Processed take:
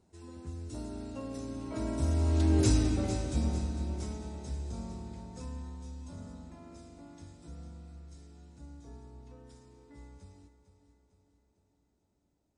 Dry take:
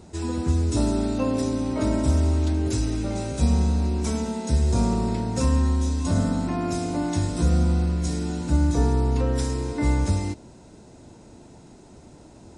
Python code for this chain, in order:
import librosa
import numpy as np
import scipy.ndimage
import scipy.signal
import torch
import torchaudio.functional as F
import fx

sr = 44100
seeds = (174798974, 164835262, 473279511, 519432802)

p1 = fx.doppler_pass(x, sr, speed_mps=10, closest_m=2.3, pass_at_s=2.66)
y = p1 + fx.echo_feedback(p1, sr, ms=451, feedback_pct=53, wet_db=-12.0, dry=0)